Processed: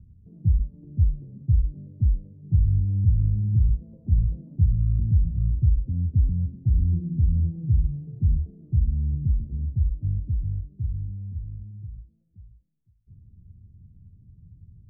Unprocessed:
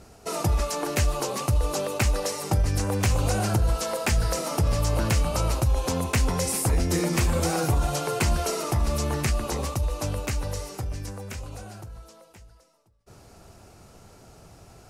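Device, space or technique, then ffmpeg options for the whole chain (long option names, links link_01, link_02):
the neighbour's flat through the wall: -filter_complex "[0:a]asettb=1/sr,asplit=3[link_01][link_02][link_03];[link_01]atrim=end=3.734[link_04];[link_02]atrim=start=3.73:end=4.56,asetpts=PTS-STARTPTS,afade=type=in:duration=0.004:curve=qsin,afade=type=out:start_time=0.826:duration=0.004:curve=qsin,equalizer=frequency=690:width_type=o:width=2.4:gain=6.5[link_05];[link_03]atrim=start=4.556[link_06];[link_04][link_05]acrossfade=duration=0.004:curve1=hsin:curve2=qsin[link_07];[link_07][link_06]acrossfade=duration=0.004:curve1=qsin:curve2=hsin,lowpass=frequency=180:width=0.5412,lowpass=frequency=180:width=1.3066,equalizer=frequency=88:width_type=o:width=0.5:gain=6,volume=1.5dB"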